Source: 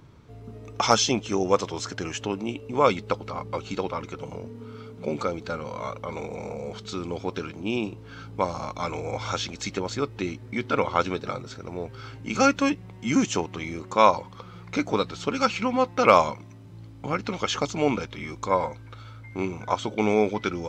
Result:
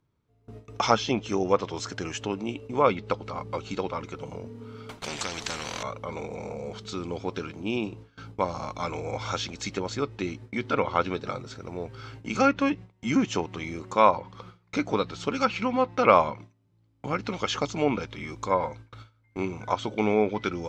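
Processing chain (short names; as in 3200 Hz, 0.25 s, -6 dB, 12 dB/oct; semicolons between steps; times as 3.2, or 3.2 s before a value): treble ducked by the level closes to 2900 Hz, closed at -17 dBFS; gate with hold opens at -32 dBFS; 4.89–5.83 spectral compressor 4:1; gain -1.5 dB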